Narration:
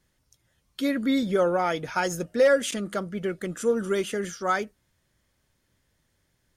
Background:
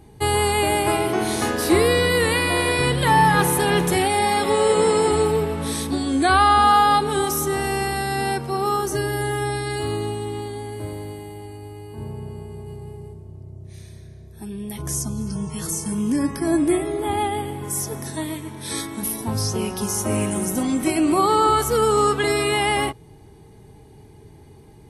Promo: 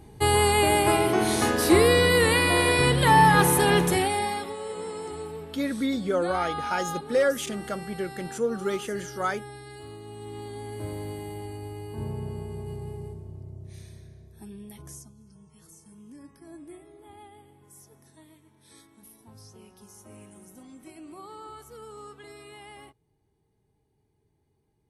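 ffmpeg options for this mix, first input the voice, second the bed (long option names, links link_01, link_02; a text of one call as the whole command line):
ffmpeg -i stem1.wav -i stem2.wav -filter_complex "[0:a]adelay=4750,volume=-3dB[link_01];[1:a]volume=16dB,afade=type=out:start_time=3.7:duration=0.84:silence=0.149624,afade=type=in:start_time=10.04:duration=1.28:silence=0.141254,afade=type=out:start_time=13.06:duration=2.07:silence=0.0530884[link_02];[link_01][link_02]amix=inputs=2:normalize=0" out.wav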